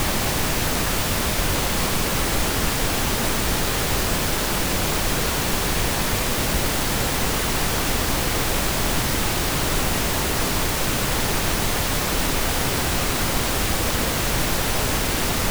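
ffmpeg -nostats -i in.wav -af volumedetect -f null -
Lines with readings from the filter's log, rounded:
mean_volume: -21.6 dB
max_volume: -7.7 dB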